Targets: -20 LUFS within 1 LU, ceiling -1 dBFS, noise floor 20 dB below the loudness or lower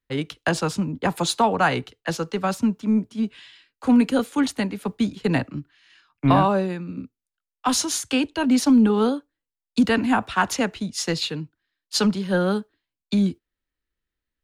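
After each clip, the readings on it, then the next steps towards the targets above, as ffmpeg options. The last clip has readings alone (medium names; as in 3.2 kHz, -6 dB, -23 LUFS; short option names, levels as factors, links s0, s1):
loudness -22.5 LUFS; peak level -6.0 dBFS; loudness target -20.0 LUFS
-> -af "volume=1.33"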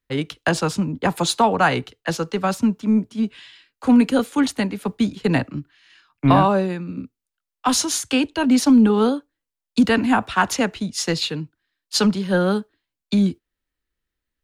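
loudness -20.0 LUFS; peak level -3.5 dBFS; noise floor -86 dBFS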